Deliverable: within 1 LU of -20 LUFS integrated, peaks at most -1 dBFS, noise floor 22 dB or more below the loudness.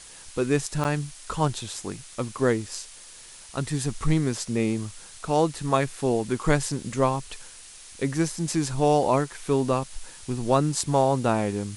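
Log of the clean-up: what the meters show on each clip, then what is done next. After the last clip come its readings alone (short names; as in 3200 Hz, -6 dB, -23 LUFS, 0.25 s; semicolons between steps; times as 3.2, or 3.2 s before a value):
dropouts 1; longest dropout 8.3 ms; noise floor -46 dBFS; noise floor target -48 dBFS; loudness -26.0 LUFS; peak -6.0 dBFS; loudness target -20.0 LUFS
-> interpolate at 0.84, 8.3 ms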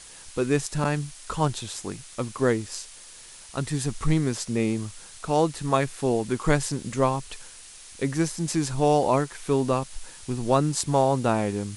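dropouts 0; noise floor -46 dBFS; noise floor target -48 dBFS
-> denoiser 6 dB, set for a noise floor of -46 dBFS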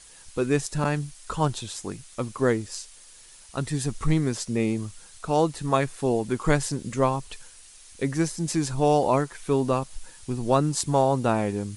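noise floor -50 dBFS; loudness -26.0 LUFS; peak -6.0 dBFS; loudness target -20.0 LUFS
-> gain +6 dB; limiter -1 dBFS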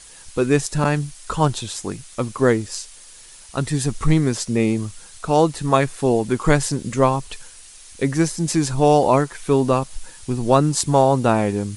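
loudness -20.0 LUFS; peak -1.0 dBFS; noise floor -44 dBFS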